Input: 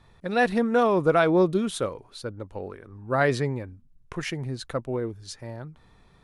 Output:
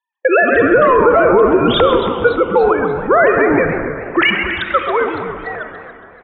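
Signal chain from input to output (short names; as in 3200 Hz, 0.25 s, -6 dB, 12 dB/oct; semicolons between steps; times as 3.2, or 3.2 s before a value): sine-wave speech; gate -45 dBFS, range -46 dB; HPF 550 Hz 12 dB/oct, from 4.29 s 1400 Hz; compressor 6:1, threshold -35 dBFS, peak gain reduction 18 dB; air absorption 150 m; frequency-shifting echo 0.131 s, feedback 48%, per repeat -140 Hz, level -10.5 dB; reverb RT60 2.3 s, pre-delay 28 ms, DRR 8.5 dB; maximiser +32 dB; warbling echo 0.283 s, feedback 45%, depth 162 cents, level -13 dB; gain -2 dB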